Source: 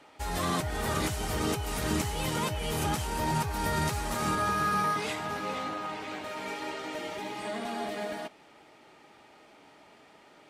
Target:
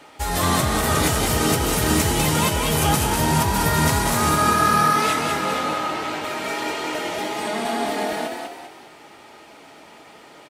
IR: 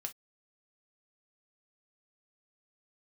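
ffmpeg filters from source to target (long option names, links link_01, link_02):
-filter_complex "[0:a]asplit=6[link_01][link_02][link_03][link_04][link_05][link_06];[link_02]adelay=198,afreqshift=40,volume=-4dB[link_07];[link_03]adelay=396,afreqshift=80,volume=-11.7dB[link_08];[link_04]adelay=594,afreqshift=120,volume=-19.5dB[link_09];[link_05]adelay=792,afreqshift=160,volume=-27.2dB[link_10];[link_06]adelay=990,afreqshift=200,volume=-35dB[link_11];[link_01][link_07][link_08][link_09][link_10][link_11]amix=inputs=6:normalize=0,asplit=2[link_12][link_13];[1:a]atrim=start_sample=2205,highshelf=frequency=5700:gain=10.5[link_14];[link_13][link_14]afir=irnorm=-1:irlink=0,volume=0dB[link_15];[link_12][link_15]amix=inputs=2:normalize=0,volume=4dB"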